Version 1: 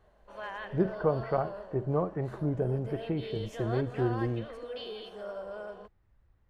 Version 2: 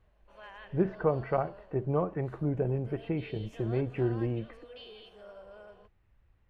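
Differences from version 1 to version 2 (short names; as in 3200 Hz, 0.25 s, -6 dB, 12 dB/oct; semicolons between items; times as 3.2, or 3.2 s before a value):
background -10.0 dB; master: add bell 2600 Hz +7 dB 0.7 oct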